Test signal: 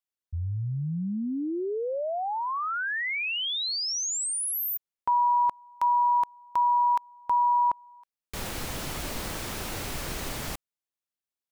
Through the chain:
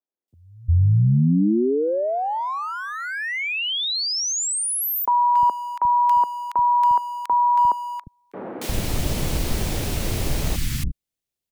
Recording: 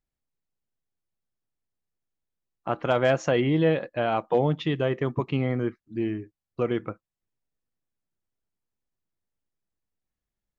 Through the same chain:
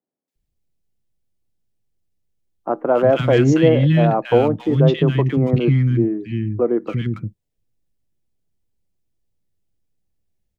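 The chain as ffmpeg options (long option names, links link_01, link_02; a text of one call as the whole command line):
ffmpeg -i in.wav -filter_complex "[0:a]lowshelf=frequency=380:gain=9.5,acrossover=split=120|940|1400[link_01][link_02][link_03][link_04];[link_03]aeval=exprs='sgn(val(0))*max(abs(val(0))-0.00316,0)':channel_layout=same[link_05];[link_01][link_02][link_05][link_04]amix=inputs=4:normalize=0,acrossover=split=240|1400[link_06][link_07][link_08];[link_08]adelay=280[link_09];[link_06]adelay=350[link_10];[link_10][link_07][link_09]amix=inputs=3:normalize=0,volume=5.5dB" out.wav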